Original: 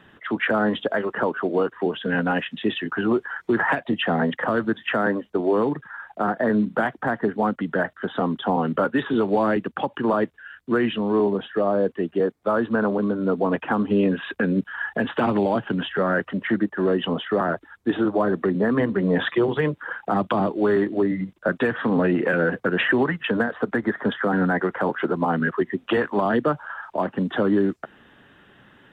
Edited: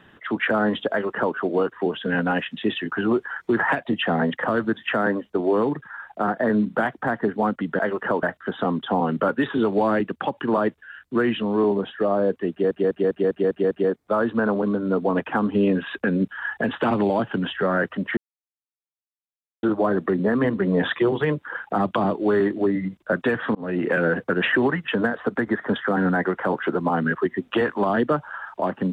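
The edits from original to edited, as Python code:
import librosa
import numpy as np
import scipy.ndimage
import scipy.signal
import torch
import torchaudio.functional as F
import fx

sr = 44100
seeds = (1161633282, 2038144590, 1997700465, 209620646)

y = fx.edit(x, sr, fx.duplicate(start_s=0.91, length_s=0.44, to_s=7.79),
    fx.stutter(start_s=12.07, slice_s=0.2, count=7),
    fx.silence(start_s=16.53, length_s=1.46),
    fx.fade_in_span(start_s=21.91, length_s=0.33), tone=tone)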